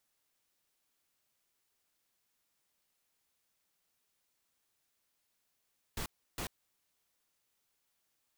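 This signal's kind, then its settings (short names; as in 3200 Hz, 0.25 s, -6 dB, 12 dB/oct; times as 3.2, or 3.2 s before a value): noise bursts pink, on 0.09 s, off 0.32 s, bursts 2, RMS -38.5 dBFS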